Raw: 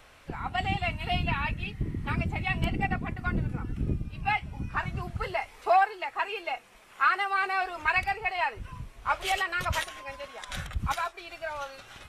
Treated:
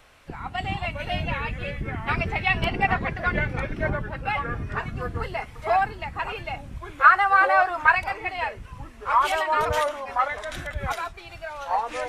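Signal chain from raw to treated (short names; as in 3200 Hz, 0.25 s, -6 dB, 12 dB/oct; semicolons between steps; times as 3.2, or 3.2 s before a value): 2.08–3.9 spectral gain 360–6100 Hz +8 dB; 7.04–7.95 band shelf 1100 Hz +10 dB; echoes that change speed 0.265 s, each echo -4 st, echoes 2, each echo -6 dB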